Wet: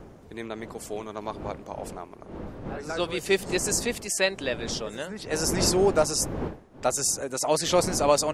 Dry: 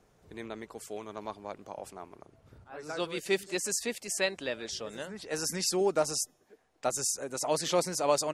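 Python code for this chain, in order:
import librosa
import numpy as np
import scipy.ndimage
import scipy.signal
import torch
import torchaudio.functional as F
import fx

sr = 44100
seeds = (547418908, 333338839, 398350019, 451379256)

y = fx.dmg_wind(x, sr, seeds[0], corner_hz=420.0, level_db=-42.0)
y = y * librosa.db_to_amplitude(5.5)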